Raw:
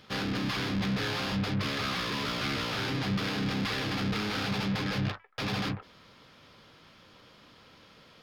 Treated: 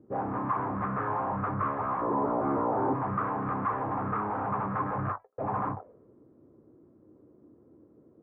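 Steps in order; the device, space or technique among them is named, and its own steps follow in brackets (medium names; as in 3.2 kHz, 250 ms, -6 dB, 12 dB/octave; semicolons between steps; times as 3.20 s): envelope filter bass rig (touch-sensitive low-pass 320–1200 Hz up, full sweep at -26.5 dBFS; cabinet simulation 69–2100 Hz, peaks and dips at 180 Hz -7 dB, 670 Hz +3 dB, 1.1 kHz +4 dB); 2.01–2.94 s: FFT filter 120 Hz 0 dB, 330 Hz +10 dB, 2.8 kHz -7 dB; trim -1.5 dB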